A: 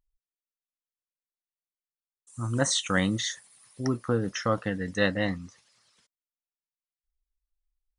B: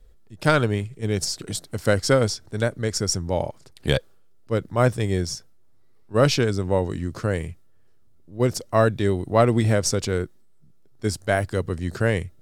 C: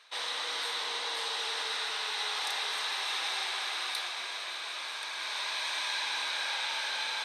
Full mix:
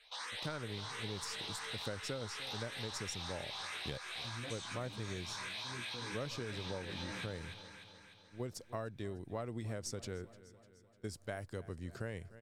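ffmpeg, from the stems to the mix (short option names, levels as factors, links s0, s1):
-filter_complex "[0:a]adelay=1850,volume=0.251,asplit=2[s0][s1];[s1]volume=0.119[s2];[1:a]agate=range=0.1:threshold=0.00794:ratio=16:detection=peak,volume=0.178,asplit=2[s3][s4];[s4]volume=0.0841[s5];[2:a]alimiter=level_in=1.33:limit=0.0631:level=0:latency=1:release=34,volume=0.75,asplit=2[s6][s7];[s7]afreqshift=2.9[s8];[s6][s8]amix=inputs=2:normalize=1,volume=1.12,asplit=2[s9][s10];[s10]volume=0.211[s11];[s0][s9]amix=inputs=2:normalize=0,flanger=delay=15.5:depth=2.5:speed=0.3,alimiter=level_in=3.55:limit=0.0631:level=0:latency=1:release=15,volume=0.282,volume=1[s12];[s2][s5][s11]amix=inputs=3:normalize=0,aecho=0:1:300|600|900|1200|1500|1800|2100|2400:1|0.55|0.303|0.166|0.0915|0.0503|0.0277|0.0152[s13];[s3][s12][s13]amix=inputs=3:normalize=0,acompressor=threshold=0.0126:ratio=6"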